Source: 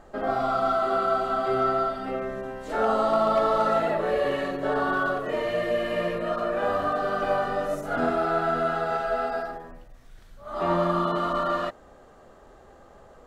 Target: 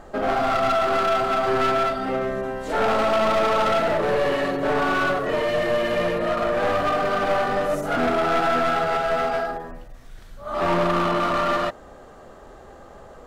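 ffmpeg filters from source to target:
ffmpeg -i in.wav -filter_complex "[0:a]aeval=exprs='clip(val(0),-1,0.0355)':channel_layout=same,asettb=1/sr,asplit=3[link_01][link_02][link_03];[link_01]atrim=end=8.304[link_04];[link_02]atrim=start=8.3:end=8.82,asetpts=PTS-STARTPTS,afade=type=in:duration=0.004:curve=qsin,afade=type=out:start_time=0.516:duration=0.004:curve=qsin,asplit=2[link_05][link_06];[link_06]adelay=16,volume=-5dB[link_07];[link_05][link_07]amix=inputs=2:normalize=0,atrim=end_sample=22932[link_08];[link_03]atrim=start=8.816[link_09];[link_04][link_08]acrossfade=duration=0.004:curve1=hsin:curve2=qsin[link_10];[link_10][link_09]acrossfade=duration=0.004:curve1=qsin:curve2=hsin,aeval=exprs='0.211*sin(PI/2*1.41*val(0)/0.211)':channel_layout=same" out.wav

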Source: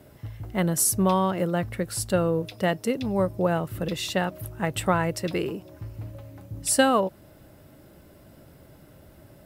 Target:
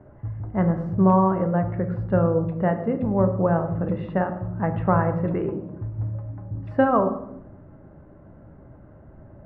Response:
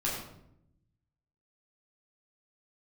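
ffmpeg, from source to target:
-filter_complex "[0:a]lowpass=frequency=1500:width=0.5412,lowpass=frequency=1500:width=1.3066,asplit=2[link_01][link_02];[1:a]atrim=start_sample=2205,lowshelf=frequency=150:gain=5[link_03];[link_02][link_03]afir=irnorm=-1:irlink=0,volume=-11dB[link_04];[link_01][link_04]amix=inputs=2:normalize=0"

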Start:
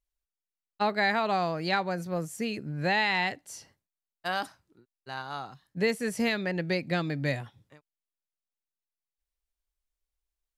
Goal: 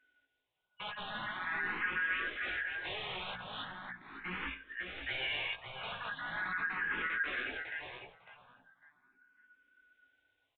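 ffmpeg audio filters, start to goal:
ffmpeg -i in.wav -filter_complex "[0:a]afftfilt=real='real(if(lt(b,272),68*(eq(floor(b/68),0)*2+eq(floor(b/68),1)*0+eq(floor(b/68),2)*3+eq(floor(b/68),3)*1)+mod(b,68),b),0)':imag='imag(if(lt(b,272),68*(eq(floor(b/68),0)*2+eq(floor(b/68),1)*0+eq(floor(b/68),2)*3+eq(floor(b/68),3)*1)+mod(b,68),b),0)':win_size=2048:overlap=0.75,equalizer=frequency=270:width=7:gain=12.5,bandreject=frequency=60:width_type=h:width=6,bandreject=frequency=120:width_type=h:width=6,bandreject=frequency=180:width_type=h:width=6,bandreject=frequency=240:width_type=h:width=6,areverse,acompressor=threshold=-38dB:ratio=4,areverse,aeval=exprs='0.0447*sin(PI/2*7.08*val(0)/0.0447)':channel_layout=same,acontrast=69,flanger=delay=15.5:depth=3:speed=1.2,asplit=2[link_01][link_02];[link_02]adelay=552,lowpass=frequency=2600:poles=1,volume=-4dB,asplit=2[link_03][link_04];[link_04]adelay=552,lowpass=frequency=2600:poles=1,volume=0.21,asplit=2[link_05][link_06];[link_06]adelay=552,lowpass=frequency=2600:poles=1,volume=0.21[link_07];[link_03][link_05][link_07]amix=inputs=3:normalize=0[link_08];[link_01][link_08]amix=inputs=2:normalize=0,aresample=8000,aresample=44100,asplit=2[link_09][link_10];[link_10]afreqshift=0.4[link_11];[link_09][link_11]amix=inputs=2:normalize=1,volume=-6.5dB" out.wav

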